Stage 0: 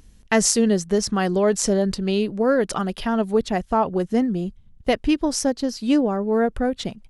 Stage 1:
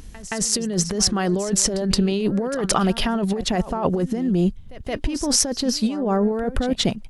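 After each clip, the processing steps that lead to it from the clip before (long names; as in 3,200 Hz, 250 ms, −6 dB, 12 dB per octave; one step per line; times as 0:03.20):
compressor whose output falls as the input rises −26 dBFS, ratio −1
echo ahead of the sound 172 ms −15.5 dB
level +4.5 dB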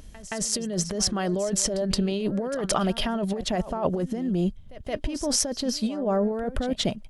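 hollow resonant body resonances 610/3,200 Hz, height 9 dB
level −5.5 dB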